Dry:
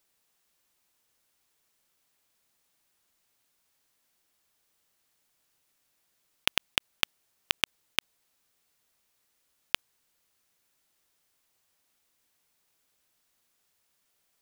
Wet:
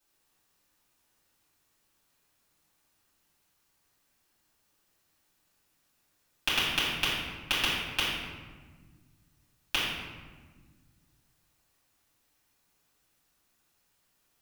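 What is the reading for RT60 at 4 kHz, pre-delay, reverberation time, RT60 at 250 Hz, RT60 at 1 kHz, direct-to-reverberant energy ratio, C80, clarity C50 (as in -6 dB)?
0.90 s, 4 ms, 1.5 s, 2.5 s, 1.4 s, -10.5 dB, 2.0 dB, -0.5 dB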